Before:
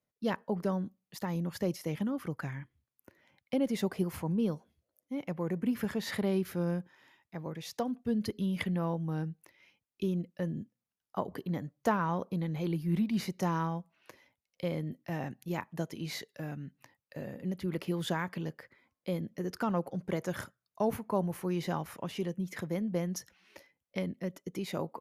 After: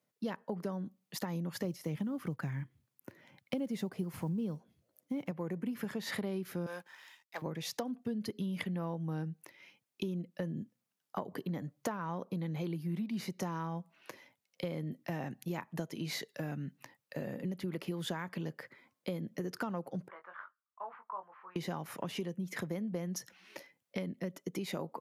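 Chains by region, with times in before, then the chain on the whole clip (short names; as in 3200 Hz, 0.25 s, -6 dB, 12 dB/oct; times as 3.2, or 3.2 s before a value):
1.64–5.31 block floating point 7-bit + low shelf 180 Hz +11 dB
6.66–7.42 HPF 860 Hz + sample leveller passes 2 + three-band expander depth 70%
20.08–21.56 ladder band-pass 1300 Hz, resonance 60% + air absorption 430 m + doubler 21 ms -6 dB
whole clip: HPF 120 Hz 24 dB/oct; compressor 5:1, threshold -40 dBFS; gain +5 dB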